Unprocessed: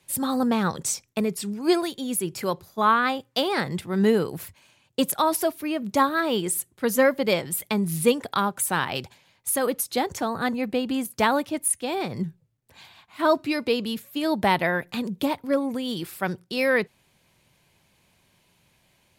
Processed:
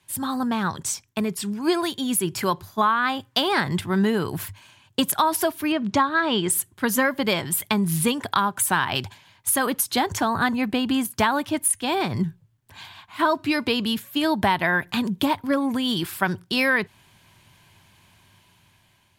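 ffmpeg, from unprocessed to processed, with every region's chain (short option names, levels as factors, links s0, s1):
-filter_complex "[0:a]asettb=1/sr,asplit=3[s0][s1][s2];[s0]atrim=end=5.724[s3];[s1]atrim=start=5.72:end=6.5,asetpts=PTS-STARTPTS,afade=t=in:d=0.004:c=qsin,afade=t=out:st=0.776:d=0.004:c=qsin,lowpass=5300,acompressor=mode=upward:threshold=0.0355:ratio=2.5:attack=3.2:release=140:knee=2.83:detection=peak[s4];[s2]atrim=start=6.496[s5];[s3][s4]acrossfade=d=0.004:c1=hsin:c2=qsin[s6];[s6][s5]acrossfade=d=0.004:c1=qsin:c2=hsin,dynaudnorm=f=590:g=5:m=3.76,equalizer=f=100:t=o:w=0.33:g=10,equalizer=f=500:t=o:w=0.33:g=-9,equalizer=f=1000:t=o:w=0.33:g=6,equalizer=f=1600:t=o:w=0.33:g=5,equalizer=f=3150:t=o:w=0.33:g=4,acompressor=threshold=0.178:ratio=6,volume=0.794"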